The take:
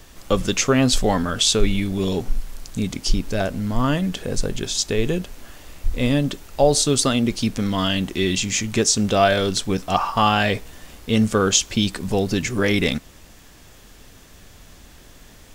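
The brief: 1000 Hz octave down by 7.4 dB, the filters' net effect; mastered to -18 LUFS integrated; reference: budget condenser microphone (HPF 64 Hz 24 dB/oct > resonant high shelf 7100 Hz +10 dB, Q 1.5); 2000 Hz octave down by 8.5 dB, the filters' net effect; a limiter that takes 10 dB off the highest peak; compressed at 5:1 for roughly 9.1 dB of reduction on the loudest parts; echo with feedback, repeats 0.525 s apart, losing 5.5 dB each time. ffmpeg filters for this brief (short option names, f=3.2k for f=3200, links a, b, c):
-af "equalizer=f=1k:t=o:g=-9,equalizer=f=2k:t=o:g=-8,acompressor=threshold=-22dB:ratio=5,alimiter=limit=-21.5dB:level=0:latency=1,highpass=f=64:w=0.5412,highpass=f=64:w=1.3066,highshelf=f=7.1k:t=q:w=1.5:g=10,aecho=1:1:525|1050|1575|2100|2625|3150|3675:0.531|0.281|0.149|0.079|0.0419|0.0222|0.0118,volume=11.5dB"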